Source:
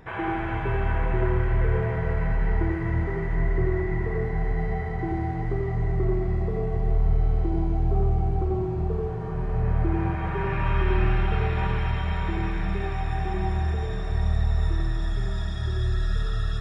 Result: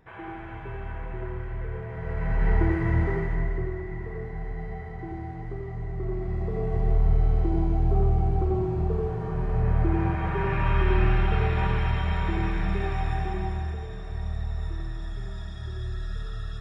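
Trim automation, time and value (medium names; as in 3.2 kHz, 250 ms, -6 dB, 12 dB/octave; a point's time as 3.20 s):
1.87 s -10.5 dB
2.48 s +2 dB
3.11 s +2 dB
3.76 s -8 dB
5.92 s -8 dB
6.80 s +0.5 dB
13.07 s +0.5 dB
13.87 s -7.5 dB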